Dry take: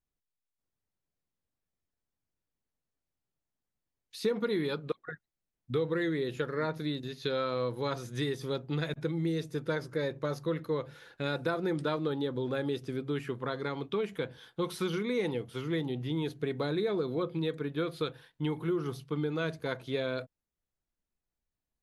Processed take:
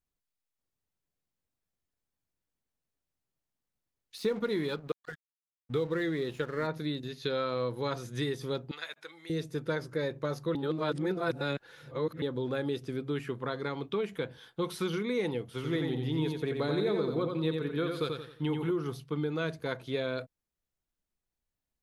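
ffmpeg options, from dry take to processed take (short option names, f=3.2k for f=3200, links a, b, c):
-filter_complex "[0:a]asettb=1/sr,asplit=3[a][b][c];[a]atrim=end=4.174[d];[b]atrim=start=4.17:end=6.67,asetpts=PTS-STARTPTS,afade=t=in:d=0.004:c=qsin,afade=t=out:st=2.496:d=0.004:c=qsin,aeval=exprs='sgn(val(0))*max(abs(val(0))-0.00251,0)':c=same[e];[c]atrim=start=6.666[f];[d][e]acrossfade=d=0.004:c1=hsin:c2=qsin[g];[g][f]acrossfade=d=0.004:c1=qsin:c2=hsin,asettb=1/sr,asplit=3[h][i][j];[h]atrim=end=8.714[k];[i]atrim=start=8.71:end=9.3,asetpts=PTS-STARTPTS,afade=t=in:d=0.004:c=qsin,afade=t=out:st=0.586:d=0.004:c=qsin,highpass=1.1k[l];[j]atrim=start=9.296[m];[k][l]acrossfade=d=0.004:c1=hsin:c2=qsin[n];[n][m]acrossfade=d=0.004:c1=qsin:c2=hsin,asettb=1/sr,asplit=3[o][p][q];[o]atrim=end=15.474[r];[p]atrim=start=15.47:end=18.71,asetpts=PTS-STARTPTS,afade=t=in:d=0.004:c=qsin,afade=t=out:st=3.236:d=0.004:c=qsin,aecho=1:1:88|176|264|352|440:0.596|0.226|0.086|0.0327|0.0124,atrim=end_sample=142884[s];[q]atrim=start=18.706[t];[r][s]acrossfade=d=0.004:c1=hsin:c2=qsin[u];[u][t]acrossfade=d=0.004:c1=qsin:c2=hsin,asplit=3[v][w][x];[v]atrim=end=10.552[y];[w]atrim=start=10.548:end=12.222,asetpts=PTS-STARTPTS,areverse[z];[x]atrim=start=12.218[aa];[y][z]acrossfade=d=0.004:c1=hsin:c2=hsin[ab];[ab][aa]acrossfade=d=0.004:c1=hsin:c2=hsin"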